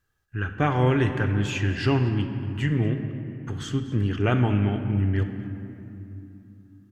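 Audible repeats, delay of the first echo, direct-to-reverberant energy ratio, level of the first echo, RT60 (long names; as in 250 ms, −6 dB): 1, 238 ms, 5.5 dB, −18.0 dB, 3.0 s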